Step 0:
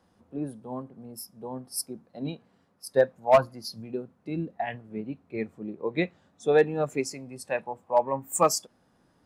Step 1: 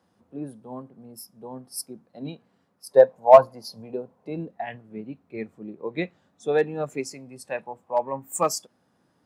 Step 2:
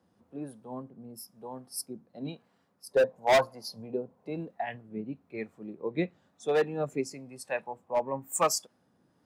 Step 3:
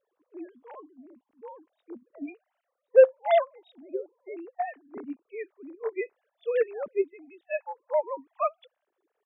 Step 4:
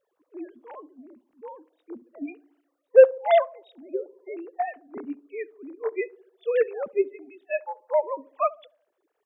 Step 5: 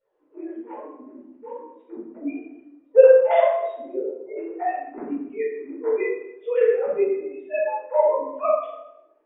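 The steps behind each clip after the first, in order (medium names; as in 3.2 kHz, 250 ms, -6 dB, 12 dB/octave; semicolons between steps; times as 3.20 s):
time-frequency box 2.91–4.48 s, 400–1100 Hz +9 dB; high-pass 90 Hz; trim -1.5 dB
hard clipper -16.5 dBFS, distortion -4 dB; harmonic tremolo 1 Hz, depth 50%, crossover 540 Hz
formants replaced by sine waves; trim +3 dB
band-passed feedback delay 70 ms, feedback 58%, band-pass 350 Hz, level -19 dB; trim +3 dB
distance through air 240 m; simulated room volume 300 m³, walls mixed, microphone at 4.5 m; trim -7.5 dB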